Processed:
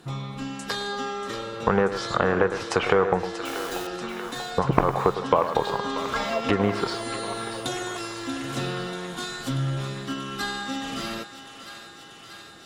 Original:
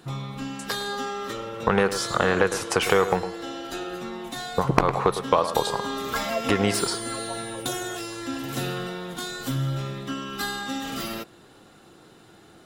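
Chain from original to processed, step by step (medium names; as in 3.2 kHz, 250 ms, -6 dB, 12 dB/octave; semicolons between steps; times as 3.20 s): low-pass that closes with the level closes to 1.6 kHz, closed at -17 dBFS; 3.45–3.87 s: word length cut 6-bit, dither none; thinning echo 636 ms, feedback 79%, high-pass 620 Hz, level -11 dB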